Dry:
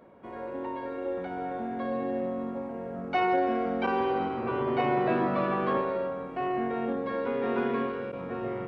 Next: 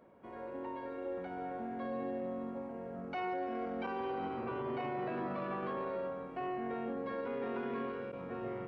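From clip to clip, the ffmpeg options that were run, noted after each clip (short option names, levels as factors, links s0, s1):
-af "alimiter=limit=0.0668:level=0:latency=1:release=21,bandreject=f=3600:w=23,volume=0.447"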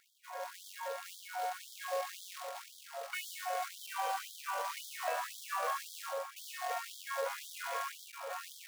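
-af "acrusher=bits=3:mode=log:mix=0:aa=0.000001,afftfilt=real='re*gte(b*sr/1024,470*pow(3200/470,0.5+0.5*sin(2*PI*1.9*pts/sr)))':imag='im*gte(b*sr/1024,470*pow(3200/470,0.5+0.5*sin(2*PI*1.9*pts/sr)))':win_size=1024:overlap=0.75,volume=2.11"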